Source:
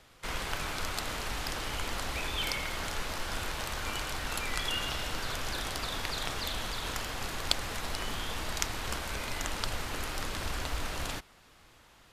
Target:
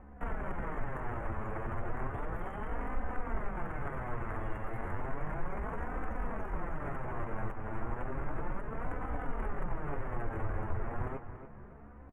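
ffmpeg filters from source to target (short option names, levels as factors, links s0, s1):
-filter_complex "[0:a]equalizer=f=89:t=o:w=1.4:g=-2.5,acompressor=threshold=0.00891:ratio=2.5,aeval=exprs='val(0)+0.000794*(sin(2*PI*50*n/s)+sin(2*PI*2*50*n/s)/2+sin(2*PI*3*50*n/s)/3+sin(2*PI*4*50*n/s)/4+sin(2*PI*5*50*n/s)/5)':c=same,flanger=delay=5.5:depth=7.5:regen=-4:speed=0.33:shape=sinusoidal,aeval=exprs='(mod(35.5*val(0)+1,2)-1)/35.5':c=same,asetrate=62367,aresample=44100,atempo=0.707107,adynamicsmooth=sensitivity=5:basefreq=1200,asuperstop=centerf=4400:order=4:qfactor=0.51,asplit=2[s0][s1];[s1]adelay=283,lowpass=f=4700:p=1,volume=0.299,asplit=2[s2][s3];[s3]adelay=283,lowpass=f=4700:p=1,volume=0.4,asplit=2[s4][s5];[s5]adelay=283,lowpass=f=4700:p=1,volume=0.4,asplit=2[s6][s7];[s7]adelay=283,lowpass=f=4700:p=1,volume=0.4[s8];[s0][s2][s4][s6][s8]amix=inputs=5:normalize=0,volume=4.22"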